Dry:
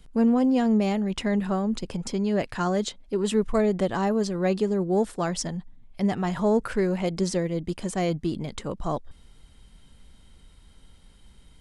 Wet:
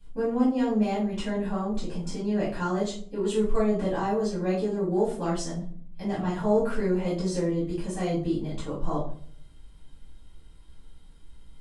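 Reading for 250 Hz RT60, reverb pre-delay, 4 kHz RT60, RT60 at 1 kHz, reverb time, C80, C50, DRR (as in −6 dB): 0.70 s, 4 ms, 0.30 s, 0.45 s, 0.50 s, 10.5 dB, 4.5 dB, −10.5 dB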